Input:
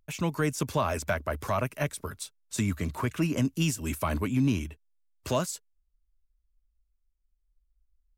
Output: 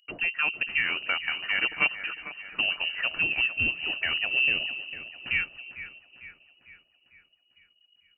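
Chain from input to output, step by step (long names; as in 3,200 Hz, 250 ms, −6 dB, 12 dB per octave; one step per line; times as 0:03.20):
0:01.60–0:02.61: comb filter 7 ms, depth 88%
echo with a time of its own for lows and highs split 340 Hz, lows 273 ms, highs 450 ms, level −12 dB
voice inversion scrambler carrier 2,900 Hz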